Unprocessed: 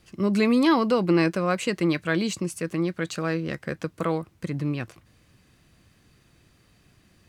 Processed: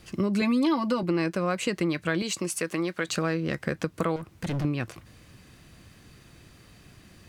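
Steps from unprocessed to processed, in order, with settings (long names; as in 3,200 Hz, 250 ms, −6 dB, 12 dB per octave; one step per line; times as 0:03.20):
0:00.41–0:01.03: comb filter 3.4 ms, depth 96%
0:02.22–0:03.08: high-pass filter 520 Hz 6 dB per octave
0:04.16–0:04.65: hard clipping −33.5 dBFS, distortion −22 dB
downward compressor 4 to 1, threshold −32 dBFS, peak gain reduction 17.5 dB
level +7 dB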